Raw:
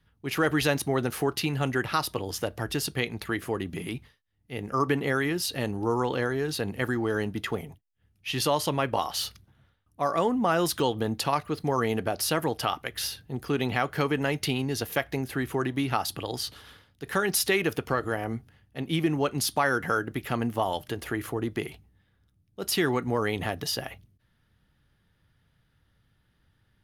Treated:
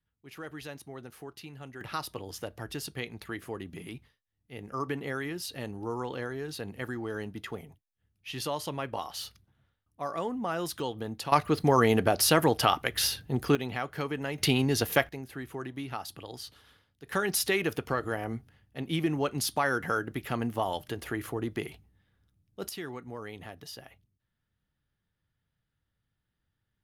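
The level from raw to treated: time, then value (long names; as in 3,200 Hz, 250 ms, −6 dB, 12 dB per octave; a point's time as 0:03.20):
−17.5 dB
from 0:01.81 −8 dB
from 0:11.32 +4 dB
from 0:13.55 −7 dB
from 0:14.38 +3 dB
from 0:15.09 −10 dB
from 0:17.12 −3 dB
from 0:22.69 −14 dB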